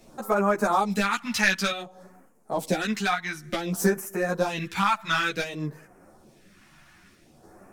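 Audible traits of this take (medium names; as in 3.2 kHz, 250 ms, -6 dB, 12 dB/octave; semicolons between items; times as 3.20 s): phasing stages 2, 0.55 Hz, lowest notch 440–3500 Hz; random-step tremolo; a shimmering, thickened sound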